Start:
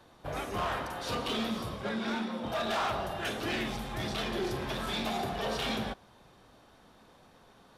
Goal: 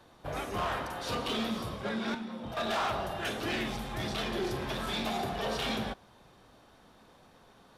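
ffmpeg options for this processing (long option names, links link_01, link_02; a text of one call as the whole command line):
ffmpeg -i in.wav -filter_complex "[0:a]asettb=1/sr,asplit=3[link_01][link_02][link_03];[link_01]atrim=end=2.144[link_04];[link_02]atrim=start=2.14:end=2.57,asetpts=PTS-STARTPTS,afade=type=in:duration=0.004:curve=qsin,afade=type=out:start_time=0.426:duration=0.004:curve=qsin,acrossover=split=190[link_05][link_06];[link_06]acompressor=threshold=-40dB:ratio=10[link_07];[link_05][link_07]amix=inputs=2:normalize=0[link_08];[link_03]atrim=start=2.566[link_09];[link_04][link_08]acrossfade=duration=0.004:curve1=hsin:curve2=qsin[link_10];[link_10][link_09]acrossfade=duration=0.004:curve1=qsin:curve2=hsin" out.wav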